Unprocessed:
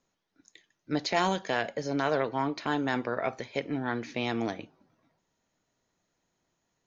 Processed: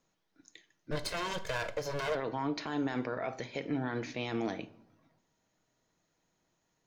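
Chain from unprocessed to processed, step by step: 0.91–2.15 minimum comb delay 1.9 ms; limiter -24.5 dBFS, peak gain reduction 9.5 dB; shoebox room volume 1000 m³, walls furnished, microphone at 0.57 m

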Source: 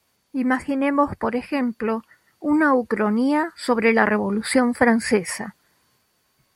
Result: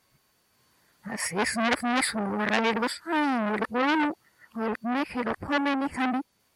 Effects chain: whole clip reversed; core saturation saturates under 3100 Hz; gain -1.5 dB

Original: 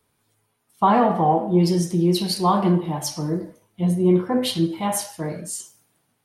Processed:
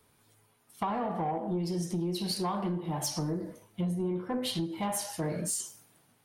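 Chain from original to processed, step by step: compressor 16:1, threshold -30 dBFS, peak gain reduction 18.5 dB; soft clip -26.5 dBFS, distortion -19 dB; gain +3 dB

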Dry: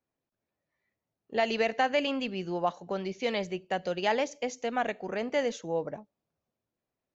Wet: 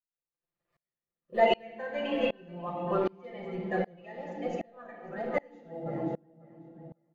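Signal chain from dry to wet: bin magnitudes rounded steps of 30 dB; bell 5400 Hz -9.5 dB 0.91 oct; de-hum 278.4 Hz, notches 27; companded quantiser 8-bit; reverb RT60 1.4 s, pre-delay 5 ms, DRR -0.5 dB; 3.7–5.86 flange 1.2 Hz, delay 1.8 ms, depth 7.3 ms, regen +82%; high shelf 2700 Hz -11 dB; comb 5.8 ms, depth 69%; tape echo 0.54 s, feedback 33%, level -13 dB, low-pass 5200 Hz; dB-ramp tremolo swelling 1.3 Hz, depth 31 dB; gain +4 dB

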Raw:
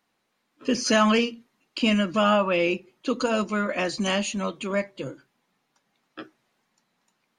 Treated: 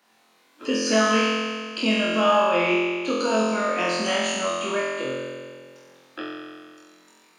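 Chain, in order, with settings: HPF 230 Hz 12 dB/oct; flutter echo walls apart 3.9 m, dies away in 1.4 s; three-band squash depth 40%; gain -3.5 dB

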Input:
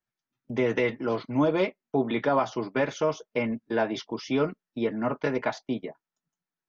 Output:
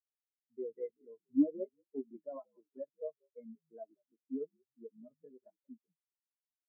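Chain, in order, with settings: frequency-shifting echo 0.184 s, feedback 33%, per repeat -67 Hz, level -9 dB; spectral expander 4:1; gain -6 dB

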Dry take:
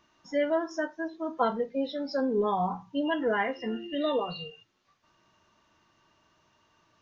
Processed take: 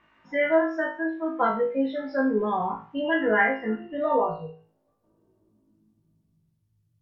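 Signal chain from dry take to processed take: low-pass sweep 2100 Hz -> 110 Hz, 3.3–6.77; on a send: flutter echo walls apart 3.2 m, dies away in 0.38 s; on the sum: SBC 192 kbps 44100 Hz

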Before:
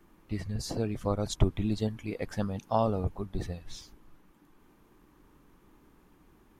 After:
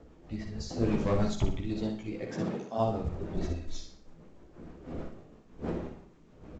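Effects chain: wind noise 420 Hz -41 dBFS; 0.81–1.28 sample leveller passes 2; 2.13–2.77 HPF 90 Hz -> 210 Hz 24 dB/oct; 3.36–3.78 comb 3.1 ms, depth 69%; rotary speaker horn 6.3 Hz; chorus voices 4, 1.1 Hz, delay 15 ms, depth 3.3 ms; on a send: feedback echo 61 ms, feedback 34%, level -6 dB; on the sum: Schroeder reverb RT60 0.44 s, DRR 12 dB; gain +1.5 dB; µ-law 128 kbps 16000 Hz

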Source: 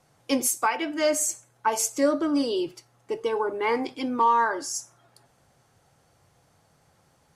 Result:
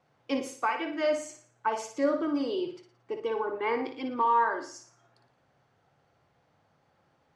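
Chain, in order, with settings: LPF 3300 Hz 12 dB/oct; low shelf 90 Hz -10.5 dB; on a send: flutter echo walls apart 9.9 m, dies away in 0.45 s; on the sum: gain -4.5 dB

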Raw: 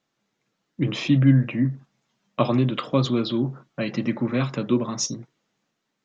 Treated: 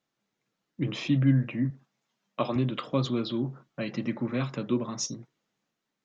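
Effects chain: 1.7–2.56 HPF 250 Hz 6 dB/oct; gain -6 dB

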